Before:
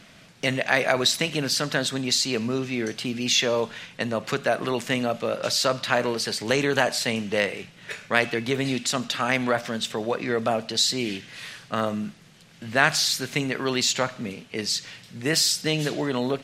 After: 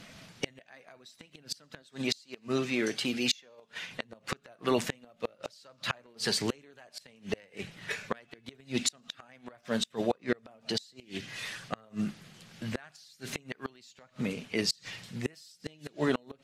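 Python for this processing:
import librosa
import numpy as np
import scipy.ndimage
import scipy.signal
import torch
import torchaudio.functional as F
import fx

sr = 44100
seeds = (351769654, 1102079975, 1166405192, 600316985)

y = fx.spec_quant(x, sr, step_db=15)
y = fx.gate_flip(y, sr, shuts_db=-15.0, range_db=-32)
y = fx.low_shelf(y, sr, hz=150.0, db=-12.0, at=(1.82, 3.91))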